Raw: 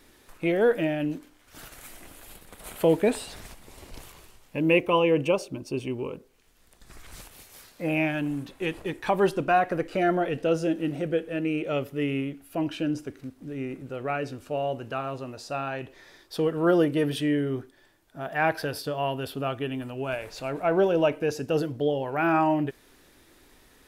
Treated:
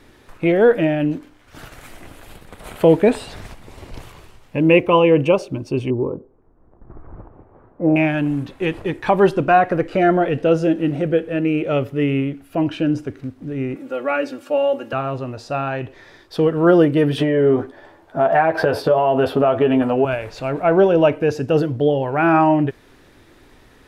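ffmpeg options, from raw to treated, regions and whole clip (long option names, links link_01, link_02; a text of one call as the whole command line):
ffmpeg -i in.wav -filter_complex "[0:a]asettb=1/sr,asplit=3[link_01][link_02][link_03];[link_01]atrim=end=5.904[link_04];[link_02]atrim=start=5.9:end=7.96,asetpts=PTS-STARTPTS,afade=type=in:duration=0.004:curve=qsin,afade=type=out:start_time=2.056:duration=0.004:curve=qsin,lowpass=frequency=1100:width=0.5412,lowpass=frequency=1100:width=1.3066,equalizer=frequency=330:width_type=o:width=0.48:gain=5.5[link_05];[link_03]atrim=start=7.956[link_06];[link_04][link_05]acrossfade=duration=0.004:curve1=hsin:curve2=qsin[link_07];[link_07][link_06]acrossfade=duration=0.004:curve1=qsin:curve2=hsin,asettb=1/sr,asplit=3[link_08][link_09][link_10];[link_08]atrim=end=13.764[link_11];[link_09]atrim=start=13.76:end=14.93,asetpts=PTS-STARTPTS,afade=type=in:duration=0.004:curve=qsin,afade=type=out:start_time=1.166:duration=0.004:curve=qsin,highpass=320,highshelf=frequency=10000:gain=9.5,aecho=1:1:3.6:0.82,atrim=end_sample=51597[link_12];[link_10]atrim=start=14.926[link_13];[link_11][link_12]acrossfade=duration=0.004:curve1=hsin:curve2=qsin[link_14];[link_14][link_13]acrossfade=duration=0.004:curve1=qsin:curve2=hsin,asettb=1/sr,asplit=3[link_15][link_16][link_17];[link_15]atrim=end=17.184[link_18];[link_16]atrim=start=17.18:end=20.05,asetpts=PTS-STARTPTS,afade=type=in:duration=0.004:curve=qsin,afade=type=out:start_time=2.866:duration=0.004:curve=qsin,equalizer=frequency=680:width=0.52:gain=13.5,acompressor=threshold=-21dB:ratio=5:attack=3.2:release=140:knee=1:detection=peak,asplit=2[link_19][link_20];[link_20]adelay=12,volume=-6dB[link_21];[link_19][link_21]amix=inputs=2:normalize=0,atrim=end_sample=126567[link_22];[link_17]atrim=start=20.046[link_23];[link_18][link_22]acrossfade=duration=0.004:curve1=hsin:curve2=qsin[link_24];[link_24][link_23]acrossfade=duration=0.004:curve1=qsin:curve2=hsin,lowpass=frequency=2600:poles=1,equalizer=frequency=110:width=2.3:gain=5.5,volume=8.5dB" out.wav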